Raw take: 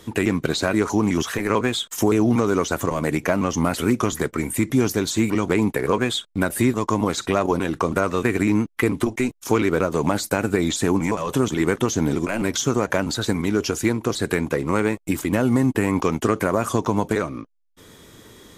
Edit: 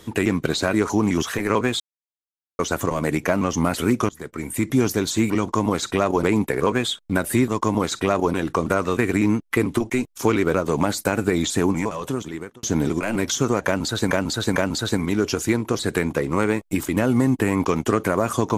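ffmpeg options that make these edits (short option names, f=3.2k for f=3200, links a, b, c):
-filter_complex "[0:a]asplit=9[a][b][c][d][e][f][g][h][i];[a]atrim=end=1.8,asetpts=PTS-STARTPTS,afade=t=out:st=1.796:d=0.004:c=hsin[j];[b]atrim=start=1.8:end=2.59,asetpts=PTS-STARTPTS,volume=0[k];[c]atrim=start=2.59:end=4.09,asetpts=PTS-STARTPTS,afade=t=in:d=0.004:c=hsin,afade=t=out:st=1.496:d=0.004:c=hsin:silence=0.0794328[l];[d]atrim=start=4.09:end=5.492,asetpts=PTS-STARTPTS,afade=t=in:d=0.63:silence=0.0794328[m];[e]atrim=start=6.838:end=7.582[n];[f]atrim=start=5.488:end=11.89,asetpts=PTS-STARTPTS,afade=t=out:st=5.432:d=0.97[o];[g]atrim=start=11.89:end=13.372,asetpts=PTS-STARTPTS,afade=t=in:d=0.004:c=hsin[p];[h]atrim=start=12.918:end=13.372[q];[i]atrim=start=12.918[r];[j][k][l][m]concat=n=4:v=0:a=1[s];[s][n]acrossfade=d=0.004:c1=hsin:c2=hsin[t];[o][p]concat=n=2:v=0:a=1[u];[t][u]acrossfade=d=0.004:c1=hsin:c2=hsin[v];[v][q]acrossfade=d=0.004:c1=hsin:c2=hsin[w];[w][r]acrossfade=d=0.004:c1=hsin:c2=hsin"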